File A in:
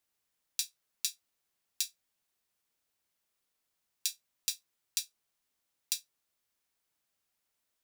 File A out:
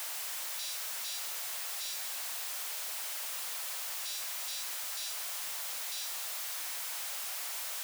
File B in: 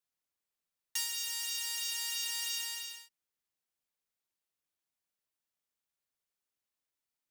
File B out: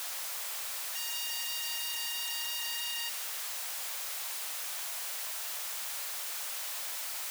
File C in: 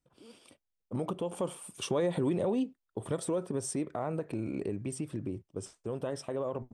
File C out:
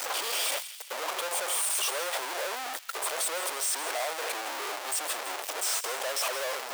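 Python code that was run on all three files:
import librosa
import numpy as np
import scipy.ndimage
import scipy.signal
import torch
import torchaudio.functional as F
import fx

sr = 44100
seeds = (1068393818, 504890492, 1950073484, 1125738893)

y = np.sign(x) * np.sqrt(np.mean(np.square(x)))
y = scipy.signal.sosfilt(scipy.signal.butter(4, 570.0, 'highpass', fs=sr, output='sos'), y)
y = fx.echo_wet_highpass(y, sr, ms=165, feedback_pct=52, hz=2400.0, wet_db=-12.0)
y = F.gain(torch.from_numpy(y), 6.5).numpy()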